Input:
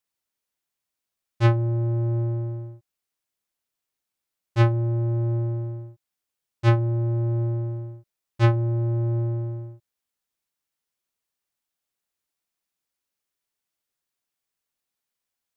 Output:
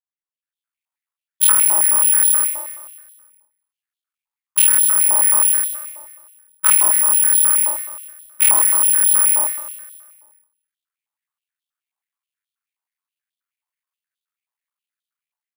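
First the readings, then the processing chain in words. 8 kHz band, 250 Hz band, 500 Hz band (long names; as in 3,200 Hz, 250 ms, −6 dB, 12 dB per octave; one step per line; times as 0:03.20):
can't be measured, below −15 dB, −7.5 dB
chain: sub-harmonics by changed cycles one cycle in 3, muted
noise gate −31 dBFS, range −14 dB
high-shelf EQ 3,500 Hz −8 dB
automatic gain control gain up to 14 dB
hard clipping −10.5 dBFS, distortion −11 dB
double-tracking delay 15 ms −12.5 dB
on a send: repeating echo 132 ms, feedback 56%, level −7.5 dB
on the sum: bad sample-rate conversion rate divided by 4×, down filtered, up zero stuff
high-pass on a step sequencer 9.4 Hz 910–3,400 Hz
level −4.5 dB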